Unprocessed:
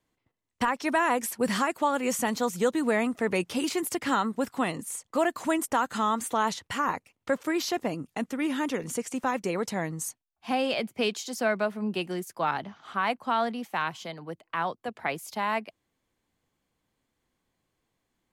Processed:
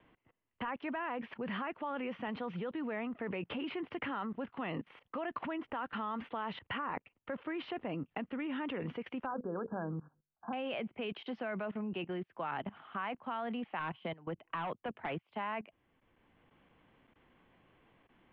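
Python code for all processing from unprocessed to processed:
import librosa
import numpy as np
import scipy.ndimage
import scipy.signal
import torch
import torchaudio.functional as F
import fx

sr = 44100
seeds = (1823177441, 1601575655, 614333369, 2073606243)

y = fx.chain(x, sr, fx.brickwall_lowpass(high_hz=1700.0),
    fx.hum_notches(base_hz=50, count=10), at=(9.26, 10.53))
y = fx.chain(y, sr, fx.peak_eq(hz=78.0, db=4.0, octaves=2.8),
    fx.clip_hard(threshold_db=-28.0), at=(13.79, 15.23))
y = fx.level_steps(y, sr, step_db=20)
y = scipy.signal.sosfilt(scipy.signal.ellip(4, 1.0, 60, 3000.0, 'lowpass', fs=sr, output='sos'), y)
y = fx.band_squash(y, sr, depth_pct=40)
y = y * librosa.db_to_amplitude(3.0)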